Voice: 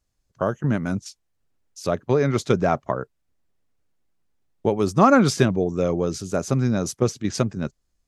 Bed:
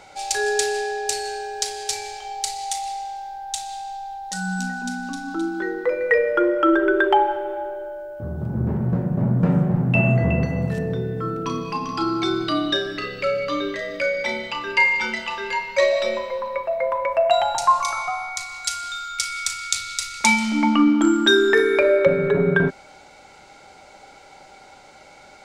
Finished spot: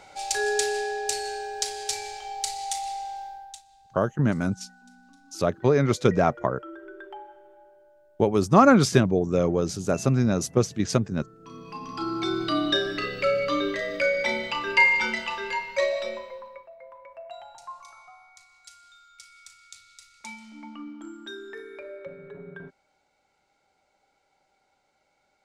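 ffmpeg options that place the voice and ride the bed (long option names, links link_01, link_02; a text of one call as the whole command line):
ffmpeg -i stem1.wav -i stem2.wav -filter_complex "[0:a]adelay=3550,volume=-0.5dB[link_01];[1:a]volume=20.5dB,afade=type=out:start_time=3.22:duration=0.4:silence=0.0841395,afade=type=in:start_time=11.39:duration=1.47:silence=0.0630957,afade=type=out:start_time=14.93:duration=1.77:silence=0.0707946[link_02];[link_01][link_02]amix=inputs=2:normalize=0" out.wav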